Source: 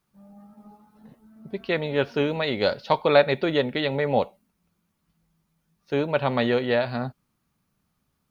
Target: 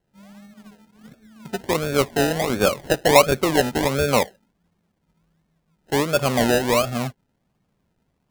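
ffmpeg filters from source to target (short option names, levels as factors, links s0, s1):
-af "afftfilt=real='re*(1-between(b*sr/4096,810,1900))':imag='im*(1-between(b*sr/4096,810,1900))':win_size=4096:overlap=0.75,acrusher=samples=31:mix=1:aa=0.000001:lfo=1:lforange=18.6:lforate=1.4,volume=1.58"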